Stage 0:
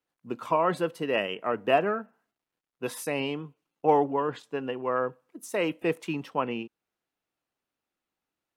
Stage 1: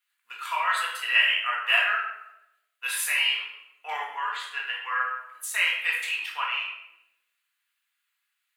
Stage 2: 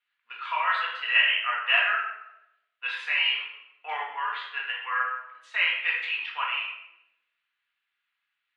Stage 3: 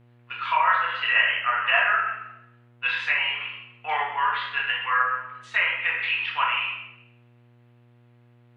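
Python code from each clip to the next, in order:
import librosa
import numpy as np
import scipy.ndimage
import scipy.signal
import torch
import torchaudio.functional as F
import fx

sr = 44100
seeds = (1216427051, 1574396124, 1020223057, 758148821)

y1 = scipy.signal.sosfilt(scipy.signal.butter(4, 1500.0, 'highpass', fs=sr, output='sos'), x)
y1 = fx.peak_eq(y1, sr, hz=5500.0, db=-9.0, octaves=0.46)
y1 = fx.room_shoebox(y1, sr, seeds[0], volume_m3=280.0, walls='mixed', distance_m=1.8)
y1 = F.gain(torch.from_numpy(y1), 8.0).numpy()
y2 = scipy.signal.sosfilt(scipy.signal.butter(4, 3600.0, 'lowpass', fs=sr, output='sos'), y1)
y3 = fx.env_lowpass_down(y2, sr, base_hz=1700.0, full_db=-23.0)
y3 = fx.rev_schroeder(y3, sr, rt60_s=0.45, comb_ms=26, drr_db=11.0)
y3 = fx.dmg_buzz(y3, sr, base_hz=120.0, harmonics=21, level_db=-62.0, tilt_db=-8, odd_only=False)
y3 = F.gain(torch.from_numpy(y3), 6.0).numpy()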